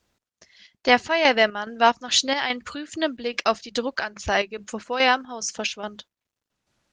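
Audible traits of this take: chopped level 2.4 Hz, depth 60%, duty 60%; Opus

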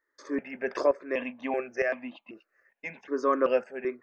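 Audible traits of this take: tremolo saw up 1.1 Hz, depth 65%; notches that jump at a steady rate 2.6 Hz 740–1500 Hz

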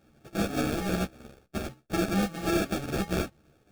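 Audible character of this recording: a buzz of ramps at a fixed pitch in blocks of 64 samples; phasing stages 2, 0.55 Hz, lowest notch 700–1400 Hz; aliases and images of a low sample rate 1000 Hz, jitter 0%; a shimmering, thickened sound

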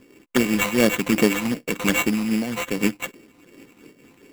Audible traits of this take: a buzz of ramps at a fixed pitch in blocks of 16 samples; phasing stages 12, 2.6 Hz, lowest notch 490–1800 Hz; aliases and images of a low sample rate 5000 Hz, jitter 0%; noise-modulated level

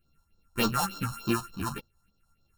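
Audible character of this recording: a buzz of ramps at a fixed pitch in blocks of 32 samples; phasing stages 4, 3.4 Hz, lowest notch 350–2200 Hz; tremolo saw up 4.3 Hz, depth 40%; a shimmering, thickened sound

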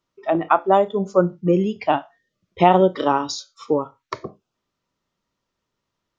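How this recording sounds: noise floor -80 dBFS; spectral tilt -5.5 dB/oct

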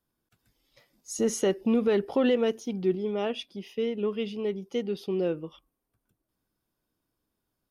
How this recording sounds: noise floor -83 dBFS; spectral tilt -5.0 dB/oct

